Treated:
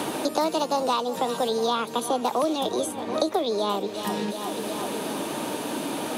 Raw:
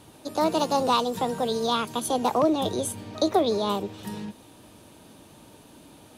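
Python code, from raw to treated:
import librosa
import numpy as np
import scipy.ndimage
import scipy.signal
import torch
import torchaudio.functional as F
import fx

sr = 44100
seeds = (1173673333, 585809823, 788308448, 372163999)

y = scipy.signal.sosfilt(scipy.signal.butter(2, 240.0, 'highpass', fs=sr, output='sos'), x)
y = fx.echo_feedback(y, sr, ms=367, feedback_pct=48, wet_db=-16.5)
y = fx.band_squash(y, sr, depth_pct=100)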